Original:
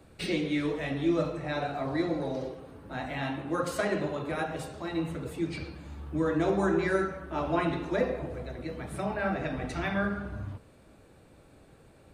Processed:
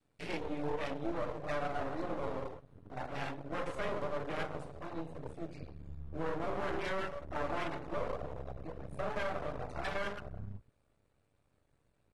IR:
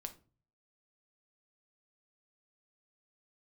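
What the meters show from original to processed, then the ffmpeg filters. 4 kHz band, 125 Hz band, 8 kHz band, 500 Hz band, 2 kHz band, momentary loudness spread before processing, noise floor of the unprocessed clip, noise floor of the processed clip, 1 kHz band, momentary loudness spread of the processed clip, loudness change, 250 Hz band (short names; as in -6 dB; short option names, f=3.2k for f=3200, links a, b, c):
-7.5 dB, -9.0 dB, -11.5 dB, -7.5 dB, -7.5 dB, 11 LU, -57 dBFS, -75 dBFS, -5.0 dB, 10 LU, -8.5 dB, -12.5 dB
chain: -filter_complex "[0:a]acrossover=split=340|1200|3100[a][b][c][d];[a]acompressor=threshold=-42dB:ratio=5[e];[e][b][c][d]amix=inputs=4:normalize=0,bandreject=f=60:t=h:w=6,bandreject=f=120:t=h:w=6,bandreject=f=180:t=h:w=6,bandreject=f=240:t=h:w=6,bandreject=f=300:t=h:w=6,afwtdn=0.0178,asubboost=boost=7.5:cutoff=76,aecho=1:1:6.9:0.45,adynamicequalizer=threshold=0.00708:dfrequency=550:dqfactor=2.4:tfrequency=550:tqfactor=2.4:attack=5:release=100:ratio=0.375:range=2.5:mode=boostabove:tftype=bell,highpass=f=51:w=0.5412,highpass=f=51:w=1.3066,alimiter=limit=-23.5dB:level=0:latency=1:release=27,aeval=exprs='max(val(0),0)':c=same,volume=-1dB" -ar 32000 -c:a aac -b:a 32k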